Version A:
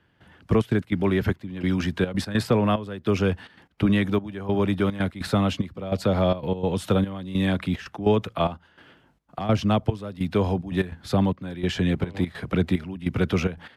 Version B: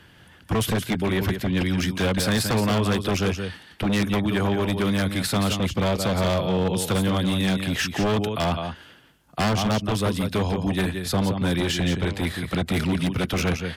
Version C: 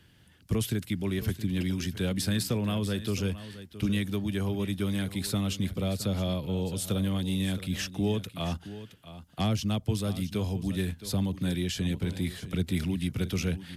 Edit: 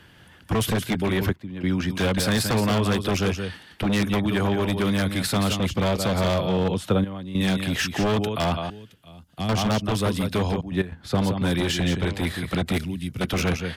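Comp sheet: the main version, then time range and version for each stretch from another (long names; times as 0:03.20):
B
0:01.29–0:01.90: punch in from A
0:06.74–0:07.41: punch in from A
0:08.70–0:09.49: punch in from C
0:10.61–0:11.15: punch in from A
0:12.78–0:13.21: punch in from C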